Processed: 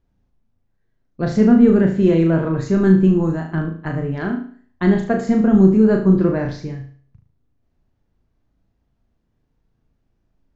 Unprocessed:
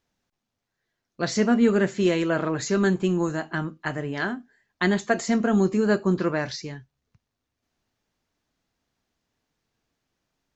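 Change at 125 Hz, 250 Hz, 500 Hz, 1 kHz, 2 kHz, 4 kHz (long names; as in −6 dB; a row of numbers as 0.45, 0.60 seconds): +10.5 dB, +9.0 dB, +5.5 dB, +1.0 dB, −2.0 dB, can't be measured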